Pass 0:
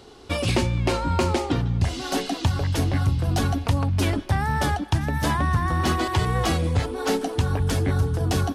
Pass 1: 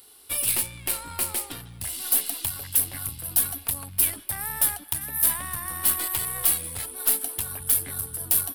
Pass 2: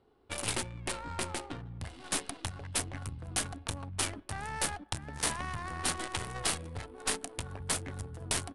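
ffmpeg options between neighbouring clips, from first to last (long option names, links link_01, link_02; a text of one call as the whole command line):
ffmpeg -i in.wav -af "tiltshelf=frequency=1200:gain=-9,aeval=exprs='(tanh(5.62*val(0)+0.8)-tanh(0.8))/5.62':channel_layout=same,aexciter=amount=11.2:drive=8.7:freq=9400,volume=-6dB" out.wav
ffmpeg -i in.wav -af "adynamicsmooth=sensitivity=5:basefreq=780,aresample=22050,aresample=44100" out.wav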